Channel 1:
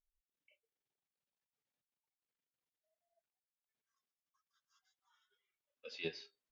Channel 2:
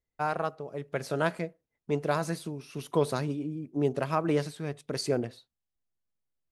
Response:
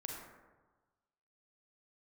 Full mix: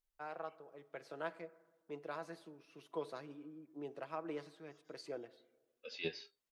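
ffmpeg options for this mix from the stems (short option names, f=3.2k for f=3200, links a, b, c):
-filter_complex "[0:a]volume=1dB[a];[1:a]acrossover=split=270 4800:gain=0.126 1 0.251[b][c][d];[b][c][d]amix=inputs=3:normalize=0,aecho=1:1:6.1:0.38,volume=-16dB,asplit=2[e][f];[f]volume=-14.5dB[g];[2:a]atrim=start_sample=2205[h];[g][h]afir=irnorm=-1:irlink=0[i];[a][e][i]amix=inputs=3:normalize=0"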